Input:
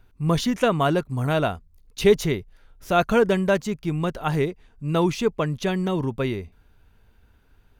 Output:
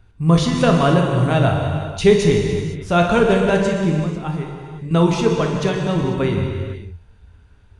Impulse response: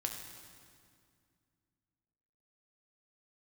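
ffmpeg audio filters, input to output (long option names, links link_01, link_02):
-filter_complex "[0:a]equalizer=frequency=95:width_type=o:width=1:gain=9,asettb=1/sr,asplit=3[link_01][link_02][link_03];[link_01]atrim=end=4.004[link_04];[link_02]atrim=start=4:end=4.91,asetpts=PTS-STARTPTS,afade=type=in:duration=0.004:curve=qsin,afade=type=out:start_time=0.906:duration=0.004:curve=qsin,acompressor=threshold=-31dB:ratio=5[link_05];[link_03]atrim=start=4.906[link_06];[link_04][link_05]acrossfade=duration=0.004:curve1=hsin:curve2=qsin[link_07];[link_07][link_06]acrossfade=duration=0.004:curve1=qsin:curve2=hsin[link_08];[1:a]atrim=start_sample=2205,afade=type=out:start_time=0.32:duration=0.01,atrim=end_sample=14553,asetrate=22932,aresample=44100[link_09];[link_08][link_09]afir=irnorm=-1:irlink=0,aresample=22050,aresample=44100"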